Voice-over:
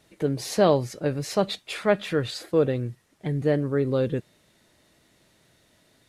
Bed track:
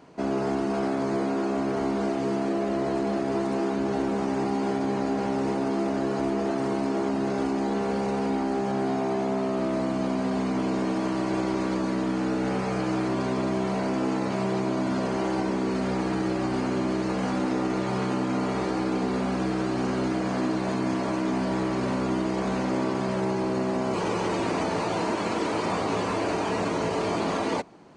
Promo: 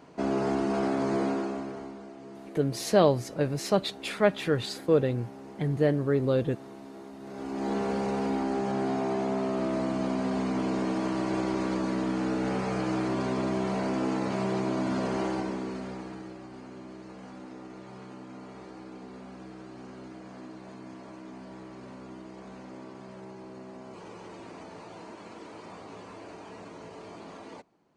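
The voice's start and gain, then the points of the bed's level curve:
2.35 s, -1.5 dB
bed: 1.28 s -1 dB
2.05 s -18.5 dB
7.18 s -18.5 dB
7.7 s -2.5 dB
15.22 s -2.5 dB
16.45 s -18 dB

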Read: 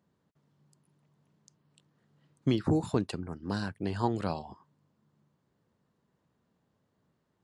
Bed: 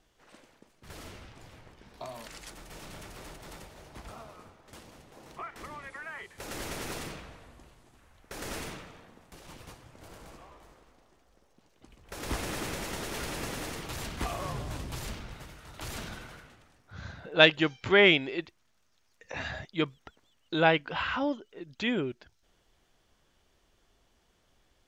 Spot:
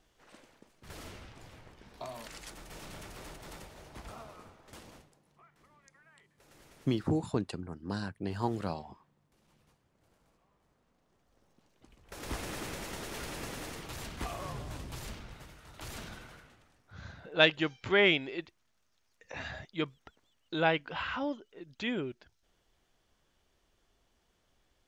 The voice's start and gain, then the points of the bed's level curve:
4.40 s, -3.0 dB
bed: 4.97 s -1 dB
5.21 s -21.5 dB
10.51 s -21.5 dB
11.44 s -4.5 dB

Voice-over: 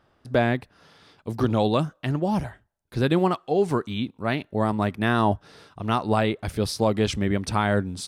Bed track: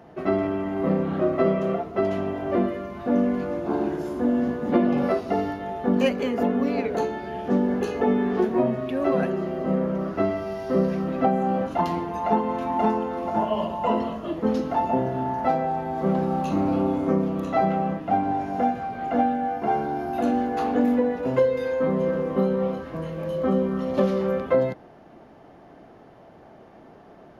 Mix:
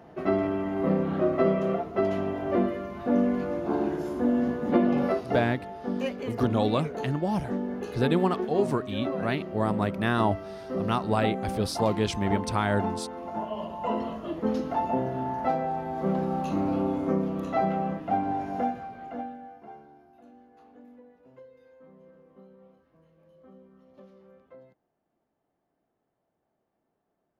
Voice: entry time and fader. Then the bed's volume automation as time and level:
5.00 s, -3.5 dB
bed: 4.98 s -2 dB
5.77 s -9 dB
13.54 s -9 dB
14.13 s -4 dB
18.57 s -4 dB
20.21 s -30.5 dB

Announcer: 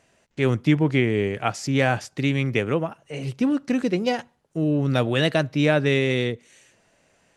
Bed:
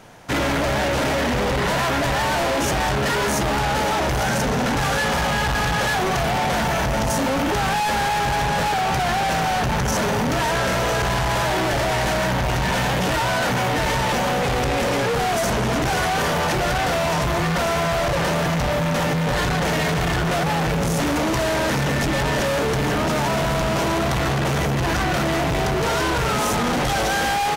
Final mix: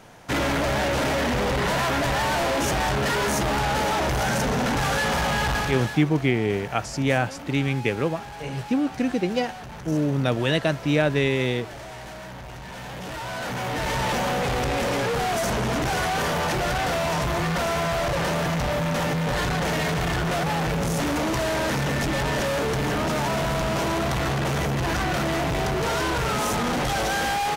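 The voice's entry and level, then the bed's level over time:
5.30 s, -1.5 dB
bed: 5.55 s -2.5 dB
6.1 s -17.5 dB
12.66 s -17.5 dB
14.03 s -3.5 dB

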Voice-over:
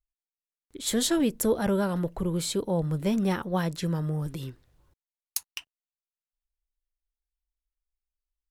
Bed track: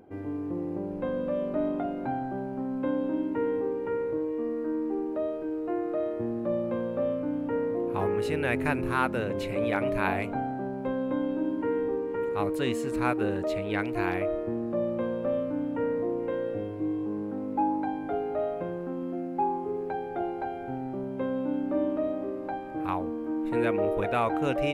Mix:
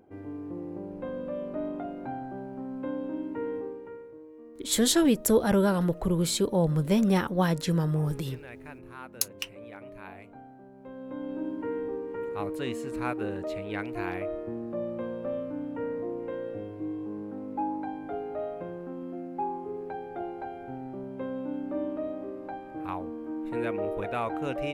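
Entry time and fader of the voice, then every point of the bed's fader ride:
3.85 s, +2.5 dB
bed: 3.57 s -5 dB
4.13 s -17.5 dB
10.71 s -17.5 dB
11.37 s -4.5 dB

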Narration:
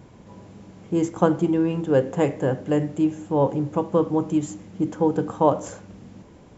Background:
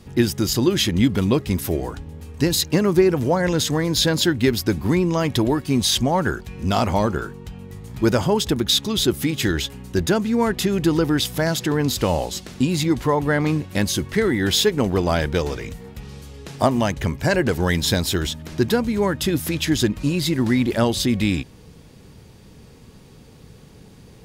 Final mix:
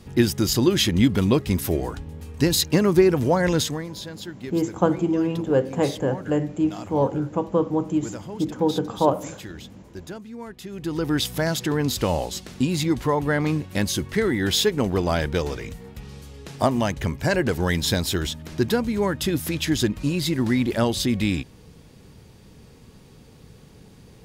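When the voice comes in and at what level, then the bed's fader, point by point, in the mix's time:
3.60 s, -1.0 dB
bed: 3.58 s -0.5 dB
3.99 s -17.5 dB
10.62 s -17.5 dB
11.14 s -2.5 dB

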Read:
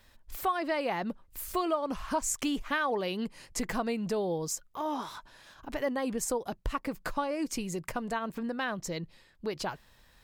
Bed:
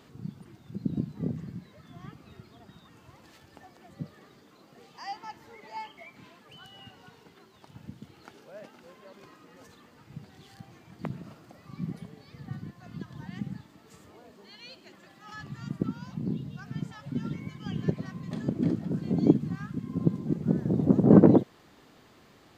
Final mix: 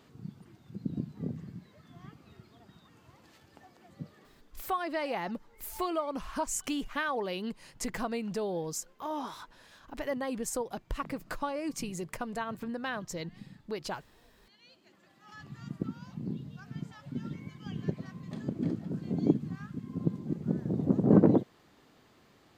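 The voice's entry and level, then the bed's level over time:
4.25 s, -2.5 dB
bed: 4.17 s -4.5 dB
4.74 s -13.5 dB
14.49 s -13.5 dB
15.56 s -5 dB

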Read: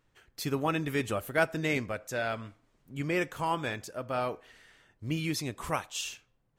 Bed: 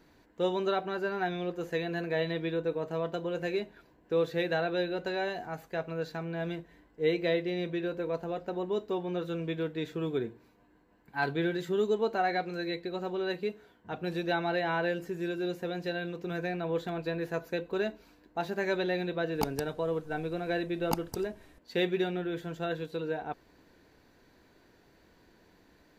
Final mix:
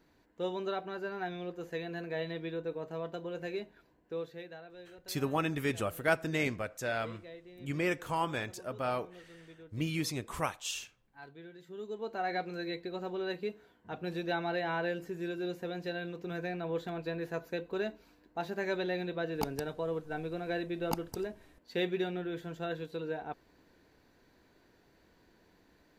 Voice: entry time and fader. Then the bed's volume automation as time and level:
4.70 s, -2.0 dB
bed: 3.98 s -6 dB
4.64 s -20.5 dB
11.52 s -20.5 dB
12.35 s -3.5 dB

